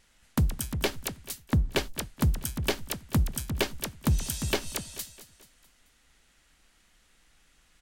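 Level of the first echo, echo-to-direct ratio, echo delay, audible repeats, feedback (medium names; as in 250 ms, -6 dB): -15.0 dB, -14.0 dB, 217 ms, 4, 48%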